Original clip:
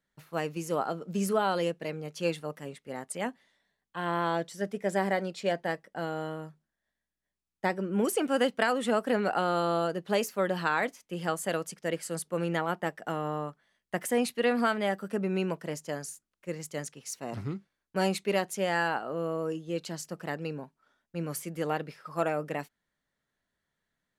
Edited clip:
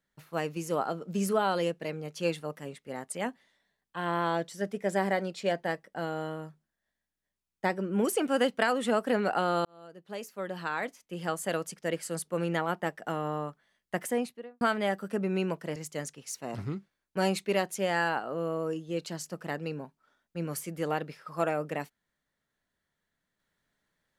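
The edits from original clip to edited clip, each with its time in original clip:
0:09.65–0:11.61: fade in
0:13.95–0:14.61: fade out and dull
0:15.76–0:16.55: remove

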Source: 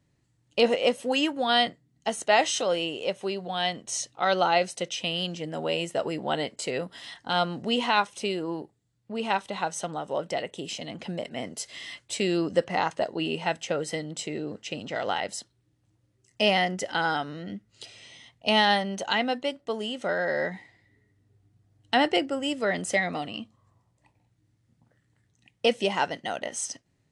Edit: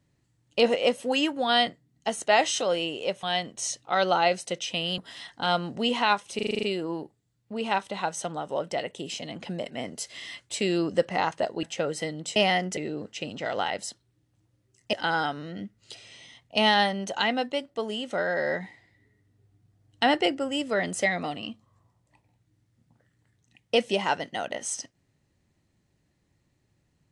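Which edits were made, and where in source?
0:03.23–0:03.53: remove
0:05.28–0:06.85: remove
0:08.22: stutter 0.04 s, 8 plays
0:13.22–0:13.54: remove
0:16.43–0:16.84: move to 0:14.27

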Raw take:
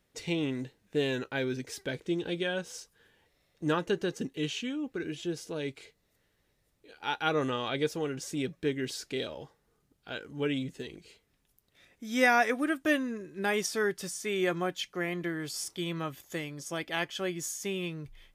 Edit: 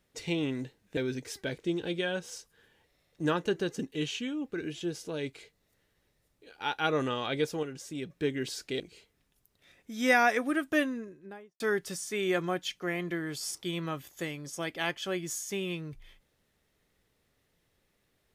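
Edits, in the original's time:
0:00.97–0:01.39: remove
0:08.05–0:08.52: clip gain −5 dB
0:09.22–0:10.93: remove
0:12.84–0:13.73: fade out and dull

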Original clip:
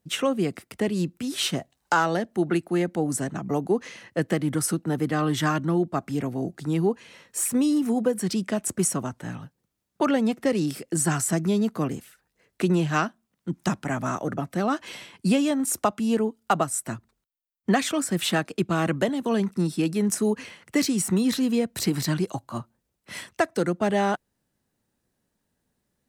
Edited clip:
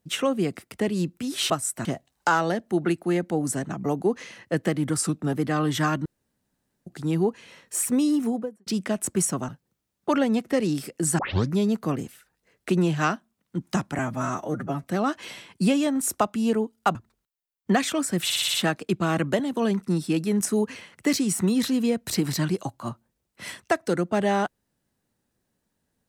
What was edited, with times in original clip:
0:04.62–0:04.95: play speed 93%
0:05.68–0:06.49: fill with room tone
0:07.79–0:08.29: fade out and dull
0:09.11–0:09.41: remove
0:11.11: tape start 0.34 s
0:13.91–0:14.48: time-stretch 1.5×
0:16.59–0:16.94: move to 0:01.50
0:18.23: stutter 0.06 s, 6 plays

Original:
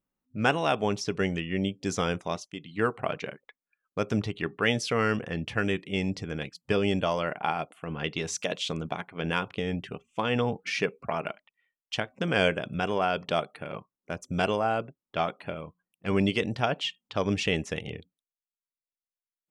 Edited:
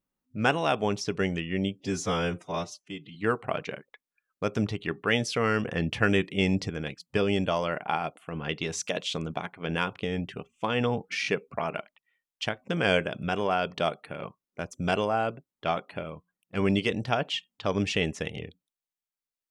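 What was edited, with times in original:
0:01.80–0:02.70: time-stretch 1.5×
0:05.20–0:06.25: clip gain +4 dB
0:10.77: stutter 0.02 s, 3 plays

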